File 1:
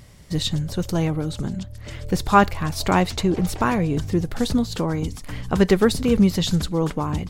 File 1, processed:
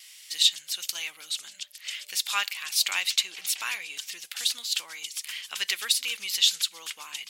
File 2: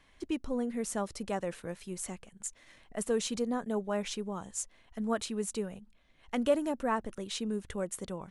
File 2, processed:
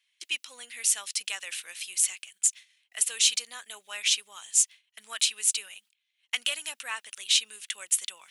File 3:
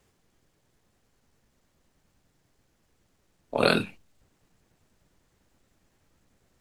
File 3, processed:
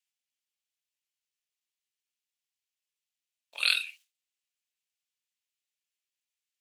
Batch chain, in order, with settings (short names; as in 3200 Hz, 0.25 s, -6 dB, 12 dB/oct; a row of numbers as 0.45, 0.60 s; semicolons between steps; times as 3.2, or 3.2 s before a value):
gate with hold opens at -43 dBFS; high shelf 5100 Hz +9 dB; in parallel at -3 dB: compressor, threshold -28 dBFS; on the sum: resonant high-pass 2700 Hz, resonance Q 2.2; match loudness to -27 LUFS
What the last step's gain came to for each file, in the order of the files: -3.0, +4.0, -5.5 dB